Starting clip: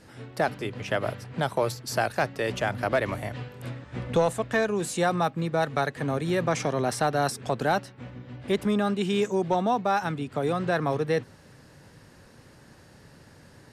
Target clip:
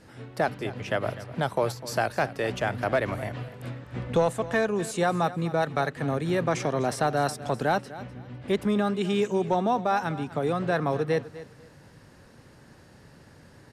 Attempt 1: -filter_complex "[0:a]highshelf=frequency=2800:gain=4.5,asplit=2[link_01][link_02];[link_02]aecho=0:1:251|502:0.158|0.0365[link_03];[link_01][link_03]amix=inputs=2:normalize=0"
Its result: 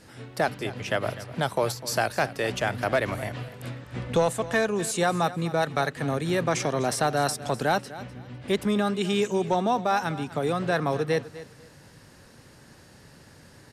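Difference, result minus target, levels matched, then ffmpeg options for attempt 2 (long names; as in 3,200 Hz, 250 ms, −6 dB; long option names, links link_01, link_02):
4,000 Hz band +4.0 dB
-filter_complex "[0:a]highshelf=frequency=2800:gain=-3,asplit=2[link_01][link_02];[link_02]aecho=0:1:251|502:0.158|0.0365[link_03];[link_01][link_03]amix=inputs=2:normalize=0"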